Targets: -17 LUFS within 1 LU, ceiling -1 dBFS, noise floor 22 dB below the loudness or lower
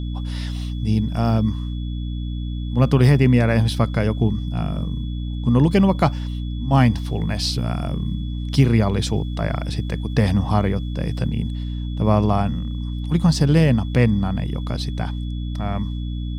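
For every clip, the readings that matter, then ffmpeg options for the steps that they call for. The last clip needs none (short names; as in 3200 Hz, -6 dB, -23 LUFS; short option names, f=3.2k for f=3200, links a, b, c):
hum 60 Hz; harmonics up to 300 Hz; hum level -24 dBFS; steady tone 3400 Hz; tone level -44 dBFS; loudness -21.0 LUFS; peak -3.0 dBFS; loudness target -17.0 LUFS
-> -af "bandreject=f=60:t=h:w=4,bandreject=f=120:t=h:w=4,bandreject=f=180:t=h:w=4,bandreject=f=240:t=h:w=4,bandreject=f=300:t=h:w=4"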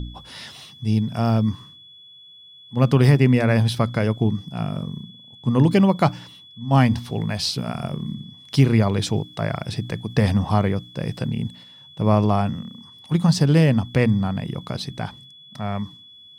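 hum none; steady tone 3400 Hz; tone level -44 dBFS
-> -af "bandreject=f=3.4k:w=30"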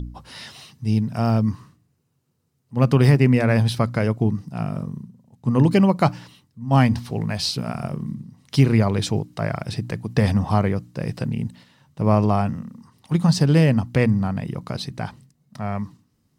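steady tone none; loudness -21.0 LUFS; peak -3.5 dBFS; loudness target -17.0 LUFS
-> -af "volume=4dB,alimiter=limit=-1dB:level=0:latency=1"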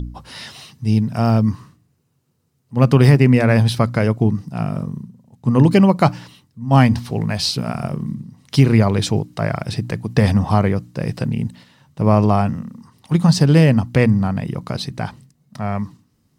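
loudness -17.5 LUFS; peak -1.0 dBFS; noise floor -64 dBFS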